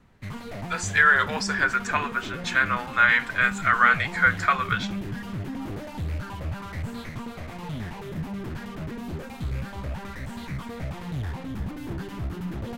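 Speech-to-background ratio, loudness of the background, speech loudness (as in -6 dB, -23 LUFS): 12.5 dB, -34.5 LUFS, -22.0 LUFS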